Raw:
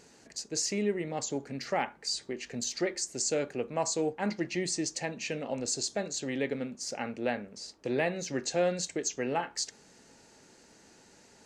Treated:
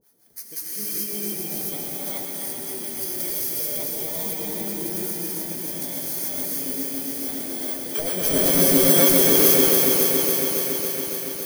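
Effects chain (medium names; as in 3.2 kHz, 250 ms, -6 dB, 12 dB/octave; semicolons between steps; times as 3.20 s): bit-reversed sample order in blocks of 16 samples; recorder AGC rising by 7 dB/s; treble shelf 6.6 kHz +11 dB; 7.95–9.31 s: waveshaping leveller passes 5; harmonic tremolo 6.1 Hz, depth 100%, crossover 640 Hz; multi-head delay 131 ms, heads first and third, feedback 64%, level -9.5 dB; gated-style reverb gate 460 ms rising, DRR -7.5 dB; bit-crushed delay 280 ms, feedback 80%, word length 6-bit, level -4.5 dB; trim -7.5 dB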